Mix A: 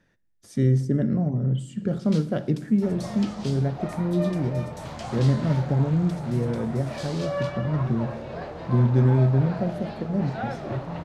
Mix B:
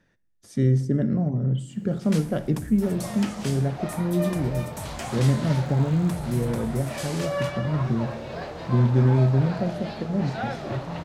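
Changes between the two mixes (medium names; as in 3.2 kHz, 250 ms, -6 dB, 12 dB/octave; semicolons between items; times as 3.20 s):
first sound: remove band-pass filter 4.1 kHz, Q 1.8; second sound: add treble shelf 2.7 kHz +9.5 dB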